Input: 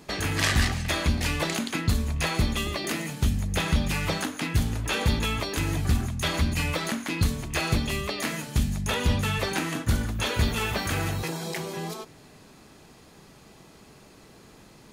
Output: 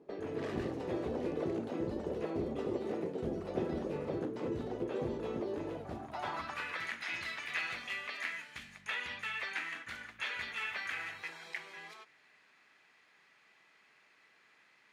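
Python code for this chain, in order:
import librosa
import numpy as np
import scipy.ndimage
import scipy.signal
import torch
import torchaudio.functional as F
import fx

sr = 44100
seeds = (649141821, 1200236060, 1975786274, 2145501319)

y = fx.echo_pitch(x, sr, ms=203, semitones=7, count=3, db_per_echo=-3.0)
y = fx.filter_sweep_bandpass(y, sr, from_hz=420.0, to_hz=2000.0, start_s=5.59, end_s=6.9, q=2.5)
y = y * librosa.db_to_amplitude(-2.5)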